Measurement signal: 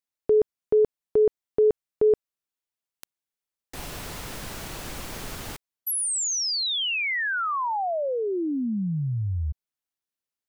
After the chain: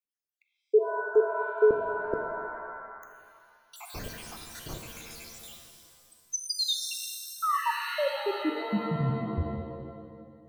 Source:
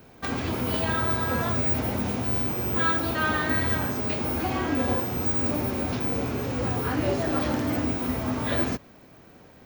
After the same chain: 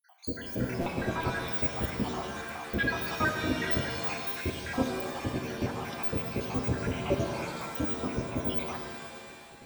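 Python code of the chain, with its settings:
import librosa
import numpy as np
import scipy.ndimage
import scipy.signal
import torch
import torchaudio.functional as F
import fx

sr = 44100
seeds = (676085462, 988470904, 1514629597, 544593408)

y = fx.spec_dropout(x, sr, seeds[0], share_pct=83)
y = fx.buffer_glitch(y, sr, at_s=(0.81, 4.61), block=256, repeats=8)
y = fx.rev_shimmer(y, sr, seeds[1], rt60_s=1.9, semitones=7, shimmer_db=-2, drr_db=4.0)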